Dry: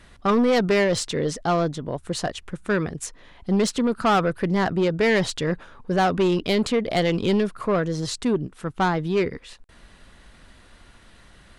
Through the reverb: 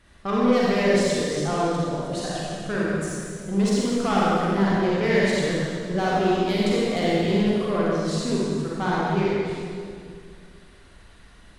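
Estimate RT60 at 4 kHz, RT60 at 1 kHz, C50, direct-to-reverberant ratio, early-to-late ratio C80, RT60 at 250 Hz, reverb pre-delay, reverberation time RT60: 1.9 s, 2.1 s, -4.5 dB, -6.5 dB, -1.5 dB, 2.5 s, 36 ms, 2.2 s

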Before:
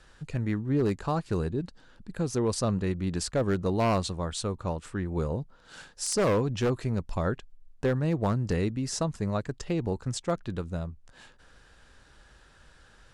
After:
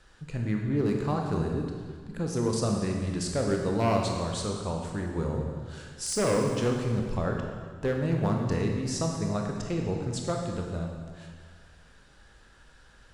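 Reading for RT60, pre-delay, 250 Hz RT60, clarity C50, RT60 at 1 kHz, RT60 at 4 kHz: 1.7 s, 19 ms, 2.0 s, 2.5 dB, 1.7 s, 1.6 s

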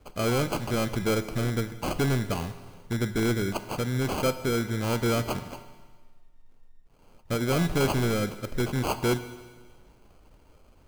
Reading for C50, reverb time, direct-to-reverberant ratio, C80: 12.5 dB, 1.5 s, 10.5 dB, 13.5 dB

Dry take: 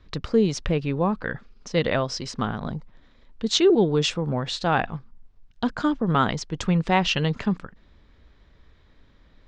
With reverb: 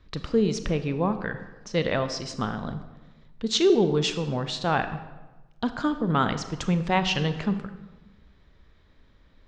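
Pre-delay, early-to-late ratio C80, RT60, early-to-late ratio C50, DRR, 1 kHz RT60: 29 ms, 12.5 dB, 1.2 s, 11.0 dB, 9.5 dB, 1.1 s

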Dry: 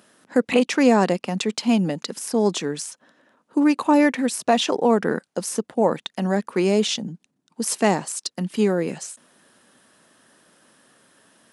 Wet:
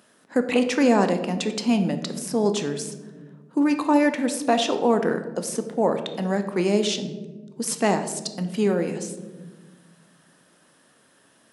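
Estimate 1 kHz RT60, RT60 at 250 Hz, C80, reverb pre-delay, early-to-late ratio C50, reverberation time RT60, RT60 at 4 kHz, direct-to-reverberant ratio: 1.0 s, 2.2 s, 12.0 dB, 15 ms, 10.0 dB, 1.4 s, 0.65 s, 7.5 dB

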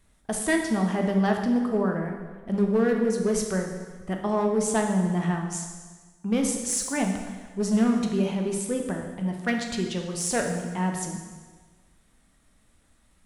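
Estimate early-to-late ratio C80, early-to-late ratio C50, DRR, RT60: 7.0 dB, 4.5 dB, 2.0 dB, 1.4 s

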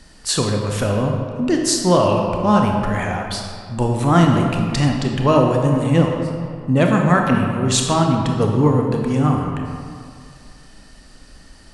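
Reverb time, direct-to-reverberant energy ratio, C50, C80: 2.2 s, 1.0 dB, 2.5 dB, 4.0 dB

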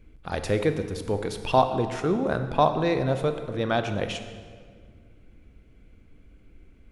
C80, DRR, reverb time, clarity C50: 10.0 dB, 8.0 dB, 1.9 s, 9.0 dB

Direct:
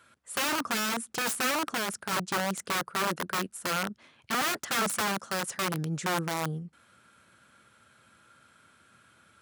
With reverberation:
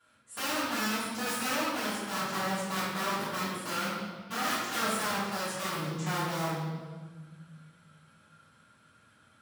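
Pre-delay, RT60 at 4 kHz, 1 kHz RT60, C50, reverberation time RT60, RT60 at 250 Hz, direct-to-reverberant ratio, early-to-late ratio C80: 3 ms, 1.2 s, 1.3 s, -1.5 dB, 1.5 s, 2.1 s, -14.5 dB, 1.0 dB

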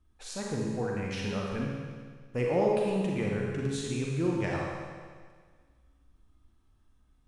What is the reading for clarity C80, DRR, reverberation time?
1.0 dB, -2.5 dB, 1.7 s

